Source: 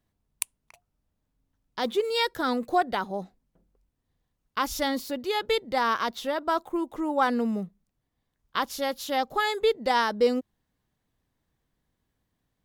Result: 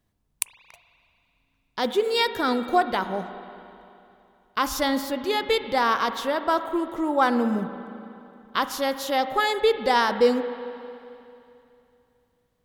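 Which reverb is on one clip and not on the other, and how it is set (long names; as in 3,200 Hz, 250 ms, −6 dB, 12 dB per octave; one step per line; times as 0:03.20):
spring reverb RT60 2.8 s, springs 37/55 ms, chirp 70 ms, DRR 9.5 dB
level +3 dB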